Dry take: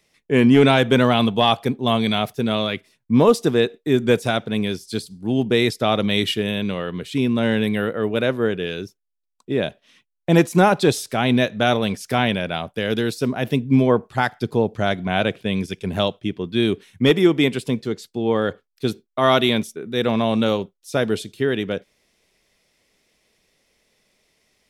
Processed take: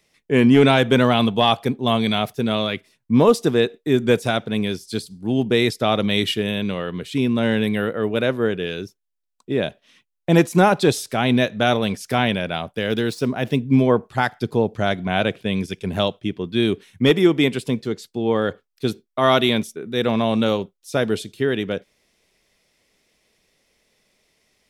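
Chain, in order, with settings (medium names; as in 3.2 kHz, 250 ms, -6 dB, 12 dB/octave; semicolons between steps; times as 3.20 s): 12.75–13.70 s: median filter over 3 samples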